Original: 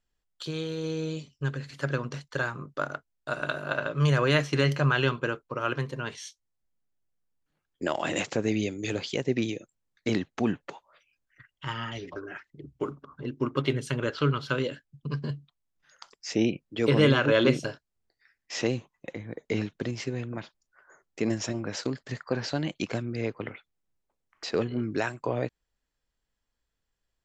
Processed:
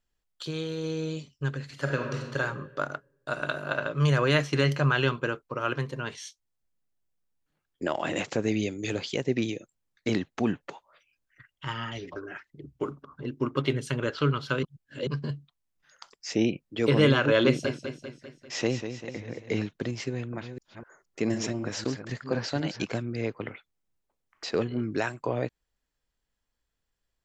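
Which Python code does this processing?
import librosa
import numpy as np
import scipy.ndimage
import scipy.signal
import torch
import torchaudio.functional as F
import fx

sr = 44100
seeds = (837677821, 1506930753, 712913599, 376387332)

y = fx.reverb_throw(x, sr, start_s=1.72, length_s=0.66, rt60_s=1.2, drr_db=2.0)
y = fx.high_shelf(y, sr, hz=4200.0, db=-7.0, at=(7.83, 8.28))
y = fx.echo_warbled(y, sr, ms=197, feedback_pct=55, rate_hz=2.8, cents=76, wet_db=-9.0, at=(17.45, 19.57))
y = fx.reverse_delay(y, sr, ms=252, wet_db=-8.0, at=(20.08, 22.85))
y = fx.edit(y, sr, fx.reverse_span(start_s=14.63, length_s=0.44), tone=tone)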